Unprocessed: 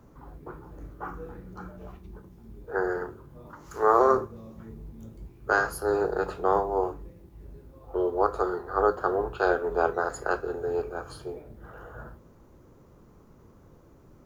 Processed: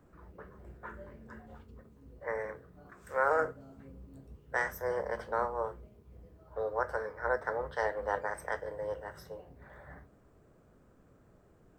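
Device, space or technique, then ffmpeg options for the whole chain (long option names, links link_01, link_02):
nightcore: -af "asetrate=53361,aresample=44100,volume=-8dB"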